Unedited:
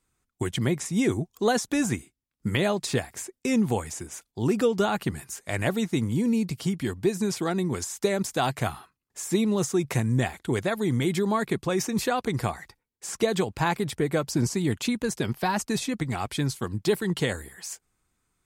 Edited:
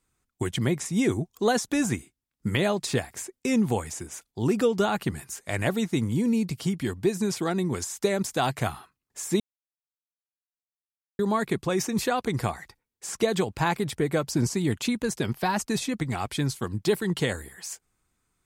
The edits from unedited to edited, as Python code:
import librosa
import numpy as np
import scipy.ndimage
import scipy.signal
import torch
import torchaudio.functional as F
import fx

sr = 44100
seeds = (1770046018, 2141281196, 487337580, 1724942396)

y = fx.edit(x, sr, fx.silence(start_s=9.4, length_s=1.79), tone=tone)